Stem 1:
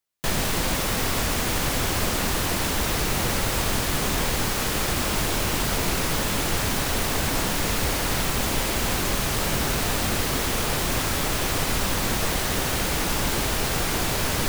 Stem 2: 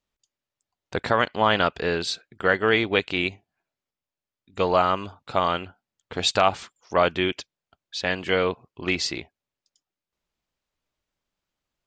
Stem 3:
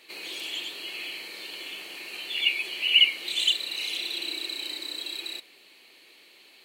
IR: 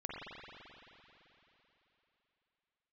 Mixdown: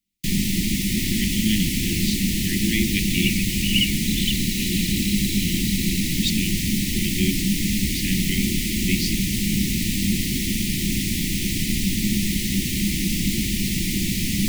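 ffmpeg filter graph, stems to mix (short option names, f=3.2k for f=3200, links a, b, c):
-filter_complex "[0:a]volume=0.5dB[a];[1:a]volume=-2.5dB[b];[2:a]adelay=800,volume=-3.5dB[c];[a][b][c]amix=inputs=3:normalize=0,asuperstop=centerf=840:order=20:qfactor=0.53,equalizer=f=200:t=o:w=0.35:g=14.5"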